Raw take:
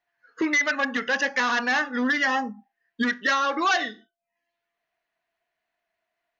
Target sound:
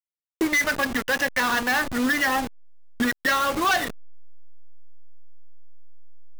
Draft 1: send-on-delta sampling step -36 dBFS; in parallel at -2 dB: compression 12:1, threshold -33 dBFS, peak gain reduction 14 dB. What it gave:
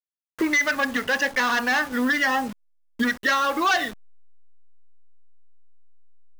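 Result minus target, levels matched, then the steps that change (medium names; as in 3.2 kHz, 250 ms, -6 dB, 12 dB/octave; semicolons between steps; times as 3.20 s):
send-on-delta sampling: distortion -10 dB
change: send-on-delta sampling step -26.5 dBFS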